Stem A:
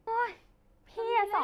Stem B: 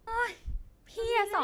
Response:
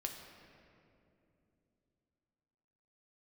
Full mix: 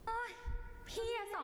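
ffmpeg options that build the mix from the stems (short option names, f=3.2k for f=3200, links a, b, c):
-filter_complex "[0:a]volume=-13dB[a];[1:a]acompressor=threshold=-47dB:ratio=1.5,adelay=0.6,volume=2dB,asplit=2[b][c];[c]volume=-3.5dB[d];[2:a]atrim=start_sample=2205[e];[d][e]afir=irnorm=-1:irlink=0[f];[a][b][f]amix=inputs=3:normalize=0,alimiter=level_in=7.5dB:limit=-24dB:level=0:latency=1:release=464,volume=-7.5dB"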